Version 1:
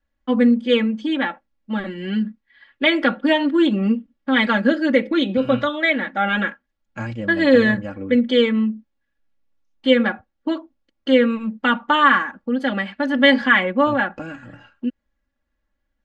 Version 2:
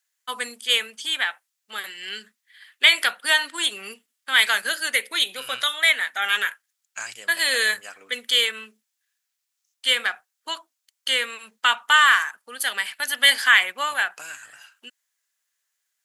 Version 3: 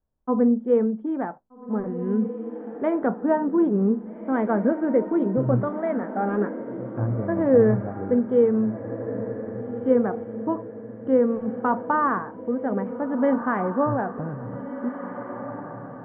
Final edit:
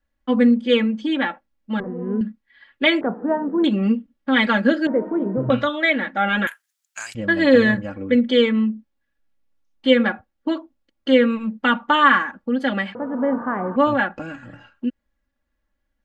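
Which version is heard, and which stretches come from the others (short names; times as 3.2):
1
1.8–2.21 from 3
3.01–3.64 from 3
4.87–5.5 from 3
6.47–7.15 from 2
12.95–13.76 from 3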